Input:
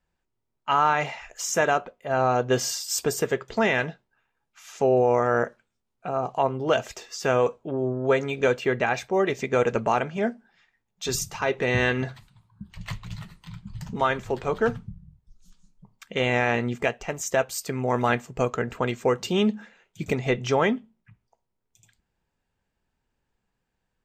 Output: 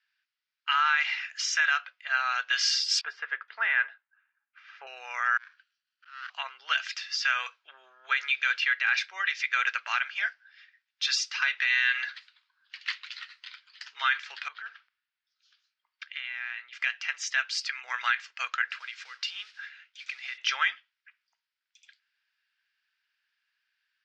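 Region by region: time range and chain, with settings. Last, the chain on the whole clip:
3.01–4.87 s: low-pass 1.3 kHz + bass shelf 380 Hz +12 dB
5.37–6.30 s: comb filter that takes the minimum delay 0.69 ms + compression 12:1, threshold -30 dBFS + slow attack 285 ms
14.48–16.73 s: distance through air 130 m + compression 12:1, threshold -33 dBFS
18.70–20.38 s: compression 8:1, threshold -33 dBFS + modulation noise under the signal 20 dB
whole clip: elliptic band-pass 1.5–5.1 kHz, stop band 80 dB; peak limiter -23 dBFS; trim +8.5 dB

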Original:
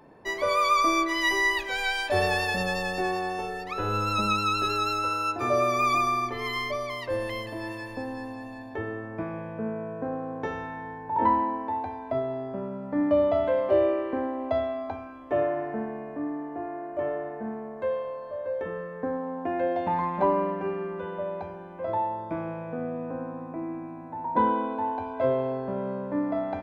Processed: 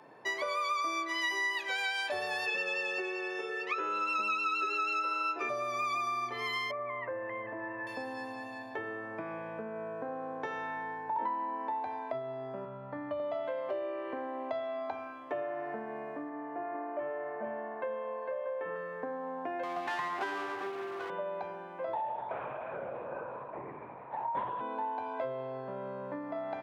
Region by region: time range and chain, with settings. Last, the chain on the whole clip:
2.46–5.49 s: cabinet simulation 240–7800 Hz, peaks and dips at 410 Hz +8 dB, 750 Hz -8 dB, 1.2 kHz +3 dB, 2.6 kHz +8 dB, 4.3 kHz -7 dB, 7 kHz -3 dB + doubling 13 ms -3.5 dB
6.71–7.87 s: steep low-pass 2 kHz + compression 1.5:1, threshold -34 dBFS
12.65–13.20 s: rippled Chebyshev low-pass 4.5 kHz, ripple 3 dB + resonant low shelf 140 Hz +11 dB, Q 1.5
16.29–18.76 s: low-pass 2.9 kHz 24 dB/octave + hum notches 50/100/150/200/250/300/350/400/450 Hz + delay 453 ms -5 dB
19.63–21.10 s: comb filter that takes the minimum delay 2.7 ms + companded quantiser 8-bit
21.95–24.61 s: high-pass 400 Hz + LPC vocoder at 8 kHz whisper
whole clip: peaking EQ 130 Hz +11.5 dB 0.28 oct; compression, threshold -32 dBFS; frequency weighting A; trim +1 dB

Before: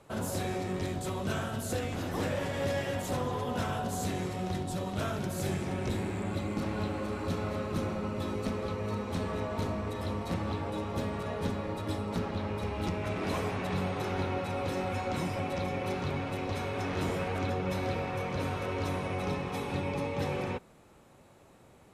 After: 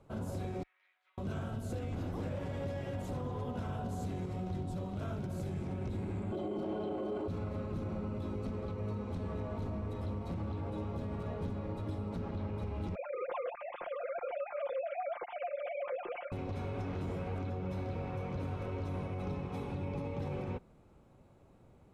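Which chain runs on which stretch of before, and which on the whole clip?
0.63–1.18 s: ladder high-pass 1.7 kHz, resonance 45% + tape spacing loss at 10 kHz 43 dB
6.32–7.28 s: bass shelf 150 Hz -11 dB + comb 5.5 ms, depth 33% + small resonant body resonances 390/640/3100 Hz, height 17 dB, ringing for 25 ms
12.95–16.32 s: formants replaced by sine waves + comb 5.7 ms, depth 68%
whole clip: tilt EQ -2.5 dB/octave; band-stop 1.8 kHz, Q 14; peak limiter -22 dBFS; trim -8 dB

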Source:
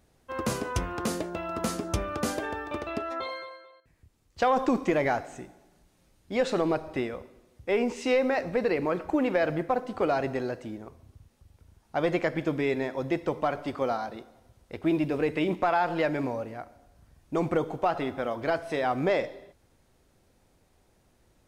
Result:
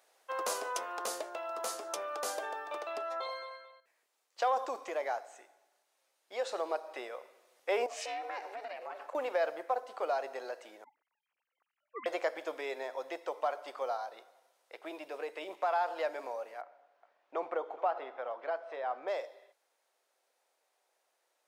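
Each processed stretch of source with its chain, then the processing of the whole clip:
7.86–9.15 s: compression, threshold -33 dBFS + ring modulator 220 Hz
10.84–12.06 s: formants replaced by sine waves + peaking EQ 820 Hz -10.5 dB 0.88 oct + frequency shift -280 Hz
16.61–19.08 s: low-pass 2.5 kHz + delay 418 ms -17.5 dB
whole clip: high-pass 540 Hz 24 dB/octave; dynamic bell 2.2 kHz, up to -7 dB, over -45 dBFS, Q 1; gain riding 2 s; trim -4 dB

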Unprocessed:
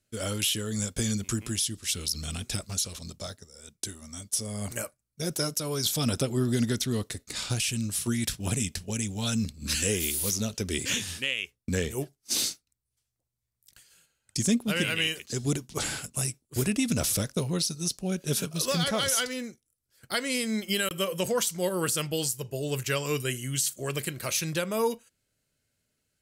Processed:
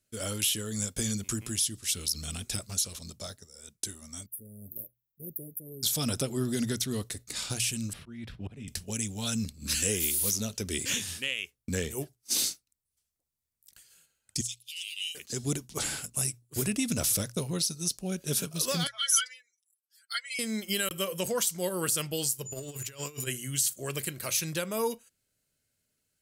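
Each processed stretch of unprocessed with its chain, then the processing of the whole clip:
4.26–5.83 s: inverse Chebyshev band-stop 1.5–6.1 kHz, stop band 70 dB + tilt shelf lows -9.5 dB, about 1.3 kHz
7.93–8.68 s: distance through air 400 m + slow attack 332 ms + three bands compressed up and down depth 40%
14.41–15.15 s: steep high-pass 2.8 kHz 48 dB/octave + treble shelf 8.3 kHz -11.5 dB + transformer saturation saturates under 3 kHz
18.87–20.39 s: spectral contrast enhancement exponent 1.9 + high-pass 1.5 kHz 24 dB/octave + comb 5.8 ms, depth 97%
22.45–23.26 s: companding laws mixed up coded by A + whistle 7 kHz -44 dBFS + compressor with a negative ratio -36 dBFS, ratio -0.5
whole clip: treble shelf 6.9 kHz +7 dB; hum notches 60/120 Hz; trim -3.5 dB

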